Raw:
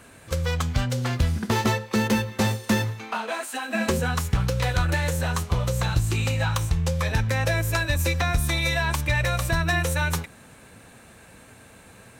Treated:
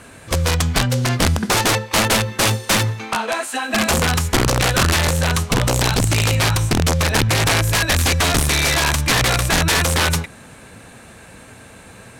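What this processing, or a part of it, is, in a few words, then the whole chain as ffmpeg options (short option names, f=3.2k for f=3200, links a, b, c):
overflowing digital effects unit: -af "aeval=exprs='(mod(7.5*val(0)+1,2)-1)/7.5':c=same,lowpass=12k,volume=7.5dB"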